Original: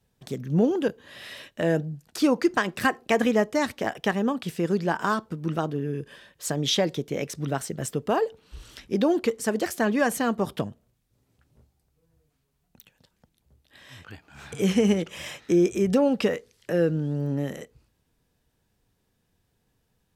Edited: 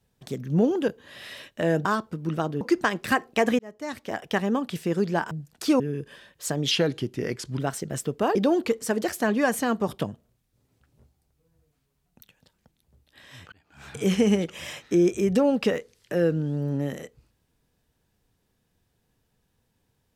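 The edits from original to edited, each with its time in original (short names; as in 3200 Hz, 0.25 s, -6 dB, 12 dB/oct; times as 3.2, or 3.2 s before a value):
1.85–2.34 swap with 5.04–5.8
3.32–4.12 fade in
6.71–7.46 speed 86%
8.23–8.93 cut
14.1–14.45 fade in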